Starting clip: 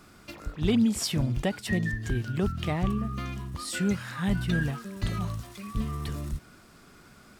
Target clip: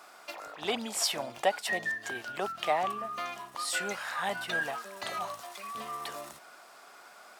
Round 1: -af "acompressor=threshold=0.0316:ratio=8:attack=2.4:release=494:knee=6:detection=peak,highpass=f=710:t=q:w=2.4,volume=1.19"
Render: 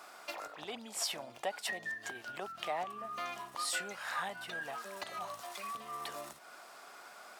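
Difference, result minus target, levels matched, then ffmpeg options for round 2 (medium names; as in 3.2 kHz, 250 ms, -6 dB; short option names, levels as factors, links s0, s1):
compression: peak gain reduction +13 dB
-af "highpass=f=710:t=q:w=2.4,volume=1.19"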